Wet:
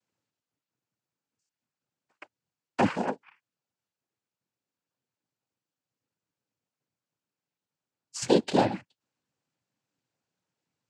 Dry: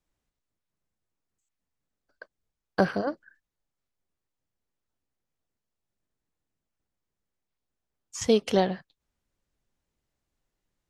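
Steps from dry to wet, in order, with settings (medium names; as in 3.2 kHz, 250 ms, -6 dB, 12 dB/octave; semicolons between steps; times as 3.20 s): noise-vocoded speech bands 8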